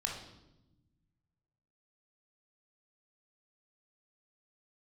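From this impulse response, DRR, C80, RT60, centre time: -0.5 dB, 8.0 dB, 0.95 s, 36 ms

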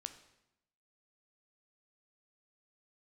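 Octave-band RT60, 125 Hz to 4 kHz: 1.0 s, 1.0 s, 0.85 s, 0.85 s, 0.80 s, 0.75 s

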